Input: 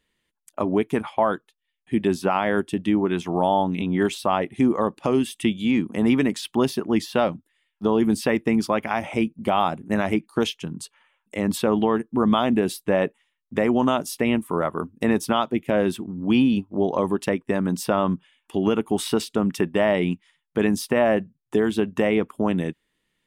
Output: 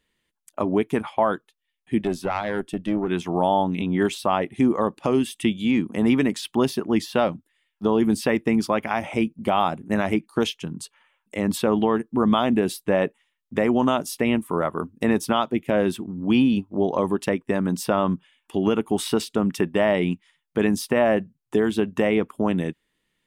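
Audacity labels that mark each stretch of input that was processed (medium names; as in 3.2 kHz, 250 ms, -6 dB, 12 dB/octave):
2.010000	3.080000	valve stage drive 13 dB, bias 0.6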